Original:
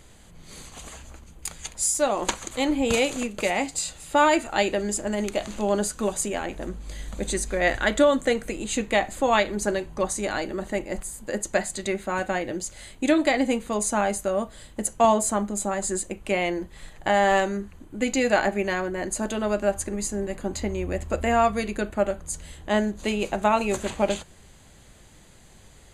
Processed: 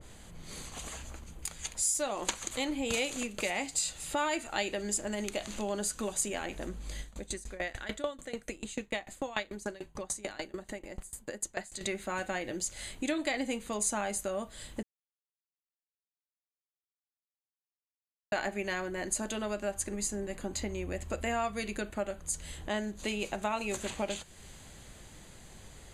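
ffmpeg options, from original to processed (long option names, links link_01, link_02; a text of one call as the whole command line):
ffmpeg -i in.wav -filter_complex "[0:a]asettb=1/sr,asplit=3[link_01][link_02][link_03];[link_01]atrim=end=7.014[link_04];[link_02]atrim=start=7.01:end=11.81,asetpts=PTS-STARTPTS,afade=type=in:duration=0.004:curve=qsin,afade=type=out:start_time=4.796:duration=0.004:curve=qsin,aeval=exprs='val(0)*pow(10,-24*if(lt(mod(6.8*n/s,1),2*abs(6.8)/1000),1-mod(6.8*n/s,1)/(2*abs(6.8)/1000),(mod(6.8*n/s,1)-2*abs(6.8)/1000)/(1-2*abs(6.8)/1000))/20)':channel_layout=same[link_05];[link_03]atrim=start=11.806[link_06];[link_04][link_05]acrossfade=duration=0.004:curve1=hsin:curve2=qsin[link_07];[link_07][link_06]acrossfade=duration=0.004:curve1=qsin:curve2=hsin,asplit=3[link_08][link_09][link_10];[link_08]atrim=end=14.83,asetpts=PTS-STARTPTS,afade=type=out:start_time=14.826:duration=0.004:curve=hsin[link_11];[link_09]atrim=start=14.83:end=18.32,asetpts=PTS-STARTPTS,volume=0[link_12];[link_10]atrim=start=18.32,asetpts=PTS-STARTPTS,afade=type=in:duration=0.004:curve=hsin[link_13];[link_11][link_12][link_13]concat=n=3:v=0:a=1,acompressor=threshold=-40dB:ratio=2,adynamicequalizer=threshold=0.00447:dfrequency=1700:dqfactor=0.7:tfrequency=1700:tqfactor=0.7:attack=5:release=100:ratio=0.375:range=3:mode=boostabove:tftype=highshelf" out.wav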